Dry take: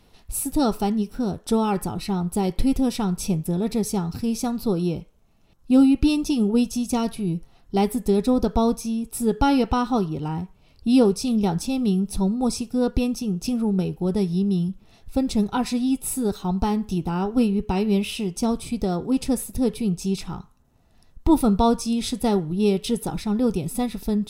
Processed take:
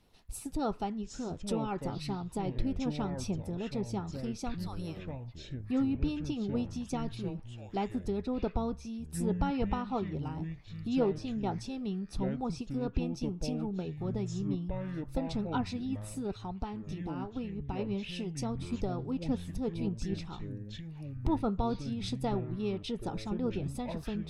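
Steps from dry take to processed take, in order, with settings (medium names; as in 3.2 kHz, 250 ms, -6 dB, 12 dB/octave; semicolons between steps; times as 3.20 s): 4.54–4.97 s: steep high-pass 720 Hz; low-pass that closes with the level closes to 2.8 kHz, closed at -18.5 dBFS; ever faster or slower copies 591 ms, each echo -7 st, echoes 2, each echo -6 dB; 16.31–17.79 s: compression 1.5:1, threshold -29 dBFS, peak gain reduction 5.5 dB; harmonic-percussive split harmonic -7 dB; trim -7.5 dB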